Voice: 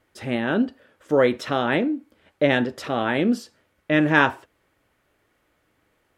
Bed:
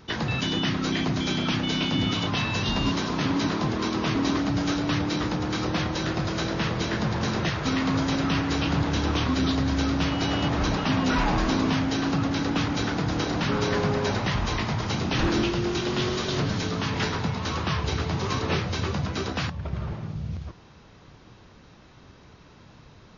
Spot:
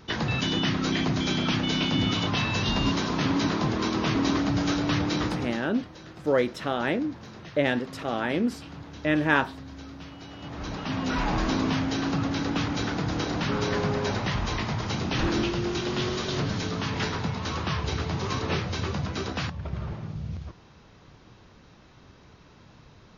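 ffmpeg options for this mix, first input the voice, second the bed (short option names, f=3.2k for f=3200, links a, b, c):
-filter_complex "[0:a]adelay=5150,volume=-5dB[a];[1:a]volume=15.5dB,afade=t=out:st=5.25:d=0.39:silence=0.133352,afade=t=in:st=10.37:d=1.05:silence=0.16788[b];[a][b]amix=inputs=2:normalize=0"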